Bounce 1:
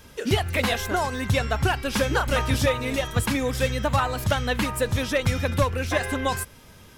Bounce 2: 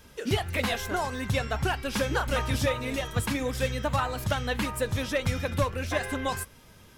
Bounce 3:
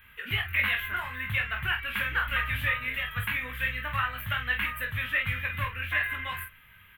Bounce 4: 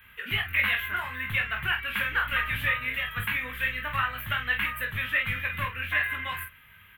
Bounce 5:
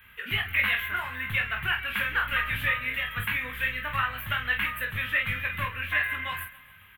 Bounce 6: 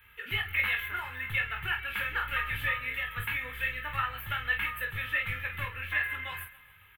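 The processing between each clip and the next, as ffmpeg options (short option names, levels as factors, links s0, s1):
-af "flanger=delay=3.9:depth=3.3:regen=-81:speed=1.7:shape=triangular"
-filter_complex "[0:a]firequalizer=gain_entry='entry(100,0);entry(300,-14);entry(760,-9);entry(1100,4);entry(1800,14);entry(2900,10);entry(5300,-26);entry(14000,12)':delay=0.05:min_phase=1,asplit=2[s0][s1];[s1]aecho=0:1:20|47:0.596|0.422[s2];[s0][s2]amix=inputs=2:normalize=0,volume=0.422"
-filter_complex "[0:a]highpass=f=49:p=1,acrossover=split=130|1700[s0][s1][s2];[s0]aeval=exprs='clip(val(0),-1,0.00398)':c=same[s3];[s3][s1][s2]amix=inputs=3:normalize=0,volume=1.19"
-af "aecho=1:1:135|270|405|540|675:0.112|0.0617|0.0339|0.0187|0.0103"
-af "aecho=1:1:2.3:0.5,volume=0.562"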